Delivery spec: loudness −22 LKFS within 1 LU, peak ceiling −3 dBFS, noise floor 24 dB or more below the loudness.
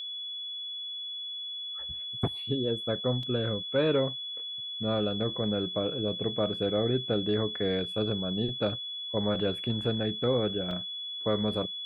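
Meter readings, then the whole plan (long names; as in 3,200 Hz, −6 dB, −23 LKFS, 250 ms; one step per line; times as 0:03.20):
number of dropouts 2; longest dropout 2.9 ms; interfering tone 3,400 Hz; level of the tone −35 dBFS; integrated loudness −30.5 LKFS; sample peak −14.5 dBFS; target loudness −22.0 LKFS
→ repair the gap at 0:03.23/0:10.71, 2.9 ms
notch filter 3,400 Hz, Q 30
level +8.5 dB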